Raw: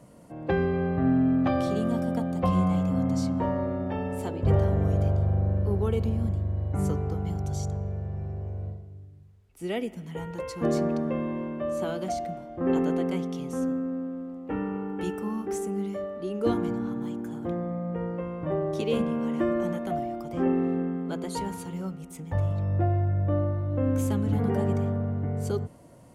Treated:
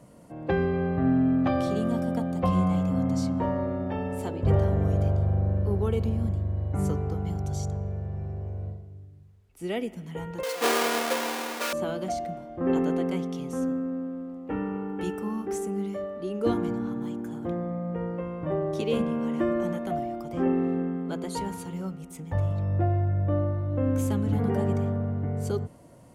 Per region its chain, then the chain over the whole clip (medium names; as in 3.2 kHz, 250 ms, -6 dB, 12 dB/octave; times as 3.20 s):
10.43–11.73 s: square wave that keeps the level + high-pass 370 Hz 24 dB/octave + comb 4.2 ms, depth 71%
whole clip: none